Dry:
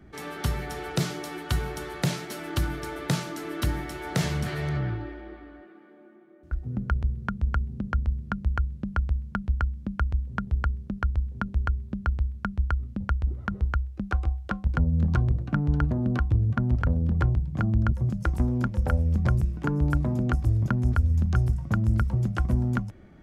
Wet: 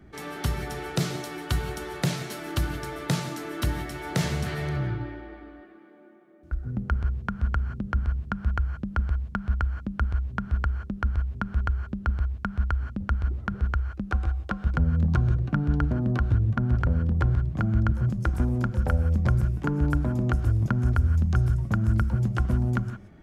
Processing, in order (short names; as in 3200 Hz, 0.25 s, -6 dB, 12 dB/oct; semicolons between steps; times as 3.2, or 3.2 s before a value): non-linear reverb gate 0.2 s rising, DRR 11 dB